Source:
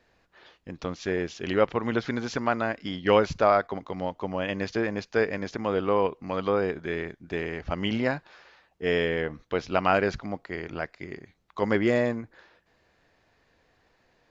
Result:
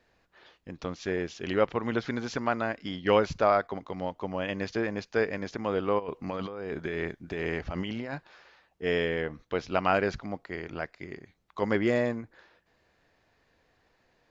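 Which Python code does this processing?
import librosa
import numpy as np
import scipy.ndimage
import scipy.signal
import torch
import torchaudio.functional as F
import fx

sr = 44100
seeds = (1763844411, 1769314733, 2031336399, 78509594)

y = fx.over_compress(x, sr, threshold_db=-32.0, ratio=-1.0, at=(5.98, 8.13), fade=0.02)
y = y * librosa.db_to_amplitude(-2.5)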